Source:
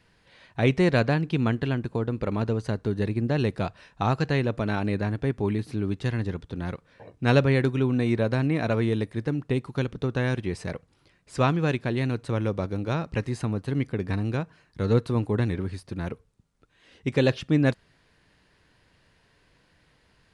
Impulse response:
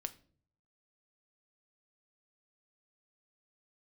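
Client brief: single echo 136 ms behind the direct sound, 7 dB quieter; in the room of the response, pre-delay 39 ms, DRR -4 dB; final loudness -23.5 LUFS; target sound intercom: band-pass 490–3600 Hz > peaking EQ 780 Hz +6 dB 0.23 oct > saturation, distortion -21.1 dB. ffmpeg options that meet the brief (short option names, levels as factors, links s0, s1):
-filter_complex "[0:a]aecho=1:1:136:0.447,asplit=2[s0][s1];[1:a]atrim=start_sample=2205,adelay=39[s2];[s1][s2]afir=irnorm=-1:irlink=0,volume=2[s3];[s0][s3]amix=inputs=2:normalize=0,highpass=490,lowpass=3600,equalizer=f=780:t=o:w=0.23:g=6,asoftclip=threshold=0.355,volume=1.5"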